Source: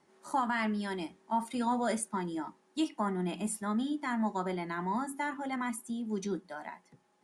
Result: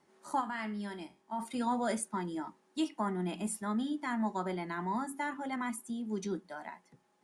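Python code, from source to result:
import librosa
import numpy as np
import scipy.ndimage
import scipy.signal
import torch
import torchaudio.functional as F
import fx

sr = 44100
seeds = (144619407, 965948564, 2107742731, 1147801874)

y = fx.comb_fb(x, sr, f0_hz=68.0, decay_s=0.37, harmonics='all', damping=0.0, mix_pct=60, at=(0.4, 1.38), fade=0.02)
y = y * librosa.db_to_amplitude(-1.5)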